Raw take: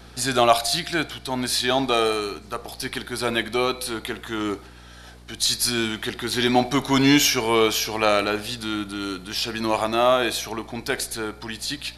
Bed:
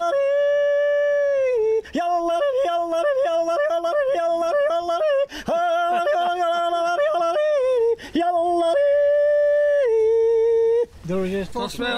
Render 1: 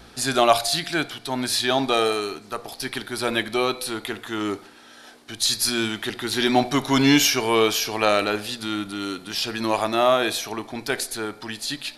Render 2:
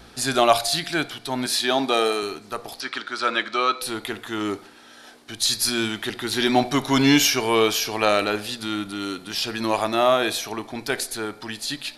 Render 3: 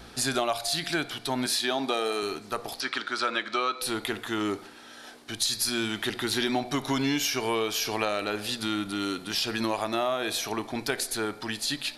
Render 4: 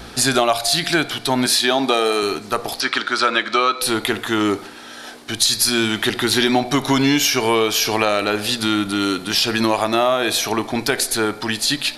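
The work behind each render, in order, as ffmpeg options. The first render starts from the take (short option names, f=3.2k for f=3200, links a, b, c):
-af "bandreject=f=60:t=h:w=4,bandreject=f=120:t=h:w=4,bandreject=f=180:t=h:w=4"
-filter_complex "[0:a]asettb=1/sr,asplit=3[a][b][c];[a]atrim=end=1.464[d];[b]atrim=start=1.46:end=2.23,asetpts=PTS-STARTPTS,afade=t=in:d=0.004:c=qsin,afade=t=out:st=0.766:d=0.004:c=qsin,highpass=f=160:w=0.5412,highpass=f=160:w=1.3066[e];[c]atrim=start=2.226[f];[d][e]acrossfade=d=0.004:c1=hsin:c2=qsin[g];[g][f]acrossfade=d=0.004:c1=qsin:c2=hsin,asettb=1/sr,asplit=3[h][i][j];[h]atrim=end=2.804[k];[i]atrim=start=2.8:end=3.82,asetpts=PTS-STARTPTS,afade=t=in:d=0.004:c=qsin,afade=t=out:st=1.016:d=0.004:c=qsin,highpass=320,equalizer=f=400:t=q:w=4:g=-5,equalizer=f=770:t=q:w=4:g=-6,equalizer=f=1.3k:t=q:w=4:g=10,lowpass=f=6.9k:w=0.5412,lowpass=f=6.9k:w=1.3066[l];[j]atrim=start=3.816[m];[k][l]acrossfade=d=0.004:c1=hsin:c2=qsin[n];[n][m]acrossfade=d=0.004:c1=qsin:c2=hsin"
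-af "acompressor=threshold=-24dB:ratio=6"
-af "volume=10.5dB,alimiter=limit=-1dB:level=0:latency=1"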